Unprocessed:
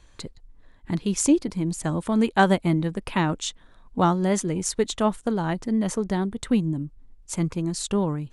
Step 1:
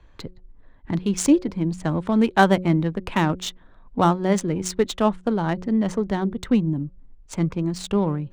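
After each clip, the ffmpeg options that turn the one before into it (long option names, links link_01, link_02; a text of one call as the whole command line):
ffmpeg -i in.wav -filter_complex "[0:a]bandreject=frequency=182.7:width_type=h:width=4,bandreject=frequency=365.4:width_type=h:width=4,bandreject=frequency=548.1:width_type=h:width=4,acrossover=split=140[link_01][link_02];[link_02]adynamicsmooth=sensitivity=4:basefreq=2600[link_03];[link_01][link_03]amix=inputs=2:normalize=0,volume=2.5dB" out.wav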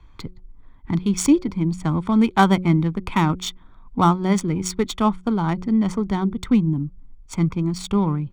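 ffmpeg -i in.wav -af "aecho=1:1:0.9:0.59" out.wav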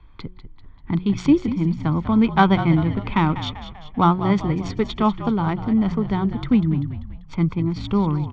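ffmpeg -i in.wav -filter_complex "[0:a]lowpass=frequency=4100:width=0.5412,lowpass=frequency=4100:width=1.3066,asplit=7[link_01][link_02][link_03][link_04][link_05][link_06][link_07];[link_02]adelay=195,afreqshift=-54,volume=-11.5dB[link_08];[link_03]adelay=390,afreqshift=-108,volume=-17.2dB[link_09];[link_04]adelay=585,afreqshift=-162,volume=-22.9dB[link_10];[link_05]adelay=780,afreqshift=-216,volume=-28.5dB[link_11];[link_06]adelay=975,afreqshift=-270,volume=-34.2dB[link_12];[link_07]adelay=1170,afreqshift=-324,volume=-39.9dB[link_13];[link_01][link_08][link_09][link_10][link_11][link_12][link_13]amix=inputs=7:normalize=0" out.wav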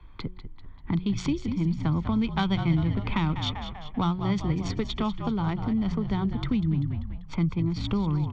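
ffmpeg -i in.wav -filter_complex "[0:a]acrossover=split=140|3000[link_01][link_02][link_03];[link_02]acompressor=threshold=-28dB:ratio=6[link_04];[link_01][link_04][link_03]amix=inputs=3:normalize=0" out.wav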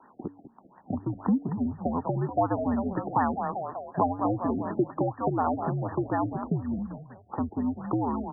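ffmpeg -i in.wav -af "highpass=frequency=330:width_type=q:width=0.5412,highpass=frequency=330:width_type=q:width=1.307,lowpass=frequency=3200:width_type=q:width=0.5176,lowpass=frequency=3200:width_type=q:width=0.7071,lowpass=frequency=3200:width_type=q:width=1.932,afreqshift=-81,afftfilt=real='re*lt(b*sr/1024,730*pow(1900/730,0.5+0.5*sin(2*PI*4.1*pts/sr)))':imag='im*lt(b*sr/1024,730*pow(1900/730,0.5+0.5*sin(2*PI*4.1*pts/sr)))':win_size=1024:overlap=0.75,volume=9dB" out.wav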